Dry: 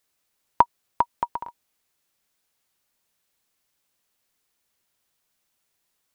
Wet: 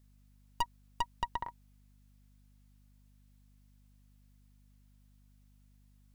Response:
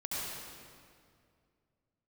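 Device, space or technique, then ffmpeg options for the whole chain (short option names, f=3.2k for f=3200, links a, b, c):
valve amplifier with mains hum: -af "aeval=exprs='(tanh(20*val(0)+0.7)-tanh(0.7))/20':c=same,aeval=exprs='val(0)+0.000794*(sin(2*PI*50*n/s)+sin(2*PI*2*50*n/s)/2+sin(2*PI*3*50*n/s)/3+sin(2*PI*4*50*n/s)/4+sin(2*PI*5*50*n/s)/5)':c=same"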